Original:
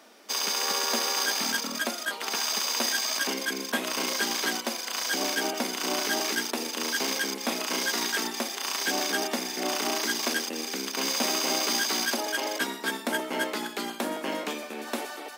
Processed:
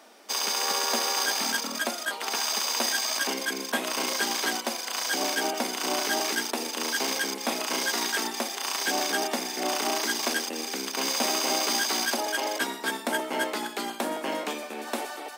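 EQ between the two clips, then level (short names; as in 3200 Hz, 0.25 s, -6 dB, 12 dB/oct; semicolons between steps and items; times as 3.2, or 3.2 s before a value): HPF 180 Hz; bell 790 Hz +3.5 dB 0.7 oct; bell 8600 Hz +3.5 dB 0.24 oct; 0.0 dB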